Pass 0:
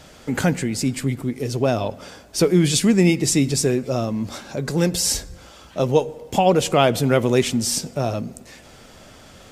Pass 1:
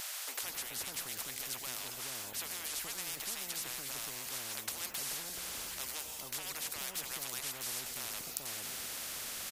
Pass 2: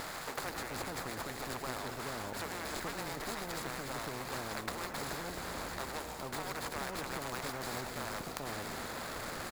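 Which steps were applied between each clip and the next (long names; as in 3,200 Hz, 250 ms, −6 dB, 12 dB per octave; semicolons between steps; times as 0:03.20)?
first-order pre-emphasis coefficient 0.97; multiband delay without the direct sound highs, lows 430 ms, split 630 Hz; every bin compressed towards the loudest bin 10 to 1; level −4 dB
running median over 15 samples; level +10 dB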